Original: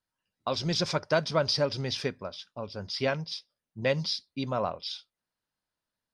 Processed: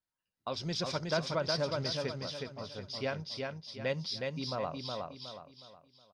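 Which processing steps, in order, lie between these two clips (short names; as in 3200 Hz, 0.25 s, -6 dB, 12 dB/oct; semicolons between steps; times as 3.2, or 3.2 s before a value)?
feedback echo 0.366 s, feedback 37%, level -3.5 dB; gain -7 dB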